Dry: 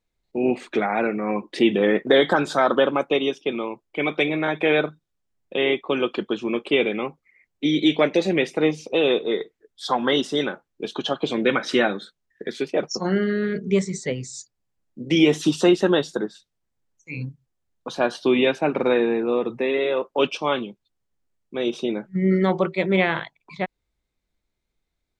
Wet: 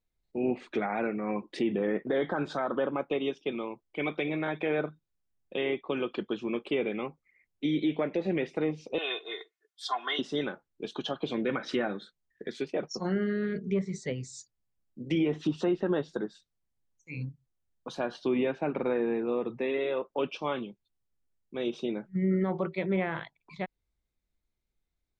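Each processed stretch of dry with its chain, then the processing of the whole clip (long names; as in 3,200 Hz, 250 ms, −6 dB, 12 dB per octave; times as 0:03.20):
0:08.98–0:10.19: high-pass filter 970 Hz + comb filter 2.8 ms, depth 96%
whole clip: treble cut that deepens with the level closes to 1,900 Hz, closed at −15 dBFS; low-shelf EQ 170 Hz +5.5 dB; brickwall limiter −11 dBFS; level −8.5 dB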